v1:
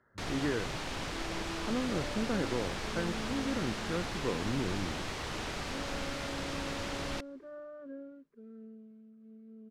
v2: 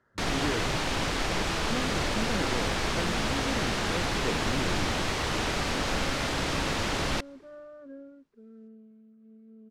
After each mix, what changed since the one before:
first sound +9.0 dB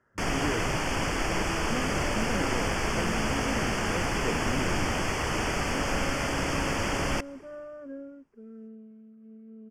first sound: send +7.5 dB; second sound +4.5 dB; master: add Butterworth band-stop 3900 Hz, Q 2.4

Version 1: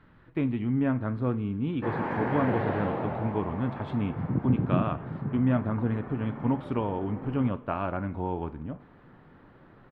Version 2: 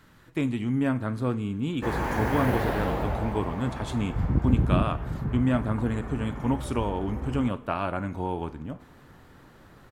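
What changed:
background: remove HPF 120 Hz 24 dB/oct; master: remove air absorption 430 m

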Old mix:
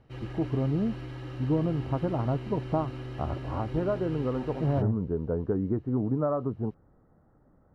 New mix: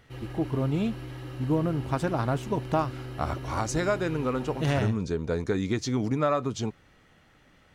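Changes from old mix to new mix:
speech: remove Bessel low-pass 770 Hz, order 8; master: remove air absorption 69 m

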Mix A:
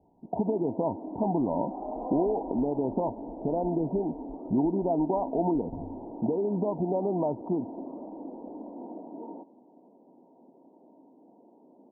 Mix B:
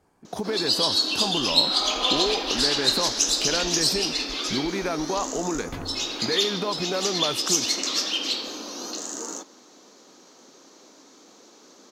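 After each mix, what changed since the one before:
speech -4.5 dB; master: remove rippled Chebyshev low-pass 960 Hz, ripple 6 dB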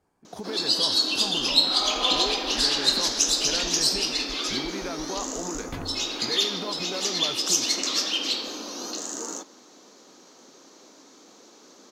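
speech -7.0 dB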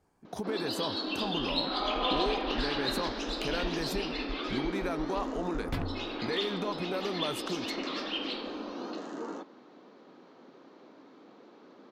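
first sound: add air absorption 440 m; master: add low shelf 130 Hz +4.5 dB

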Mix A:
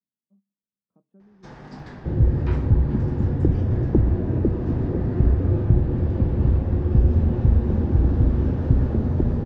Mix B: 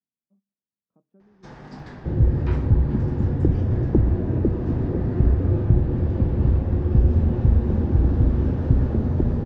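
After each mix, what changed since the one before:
speech: add bell 200 Hz -4.5 dB 0.24 oct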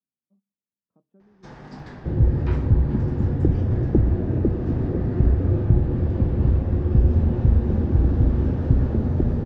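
second sound: add Butterworth band-stop 1000 Hz, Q 3.7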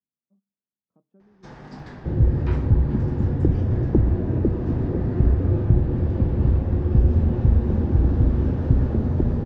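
second sound: remove Butterworth band-stop 1000 Hz, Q 3.7

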